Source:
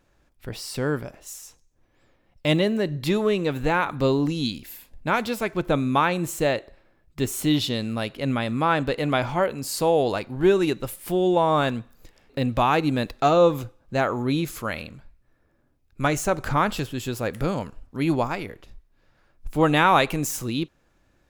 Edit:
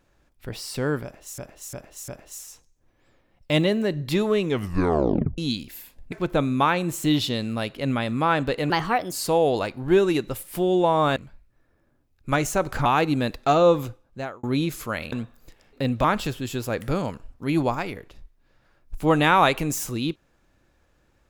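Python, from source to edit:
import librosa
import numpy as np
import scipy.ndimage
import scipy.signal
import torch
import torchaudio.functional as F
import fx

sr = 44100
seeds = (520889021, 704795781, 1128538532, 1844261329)

y = fx.edit(x, sr, fx.repeat(start_s=1.03, length_s=0.35, count=4),
    fx.tape_stop(start_s=3.37, length_s=0.96),
    fx.cut(start_s=5.07, length_s=0.4),
    fx.cut(start_s=6.39, length_s=1.05),
    fx.speed_span(start_s=9.1, length_s=0.55, speed=1.3),
    fx.swap(start_s=11.69, length_s=0.92, other_s=14.88, other_length_s=1.69),
    fx.fade_out_span(start_s=13.64, length_s=0.55), tone=tone)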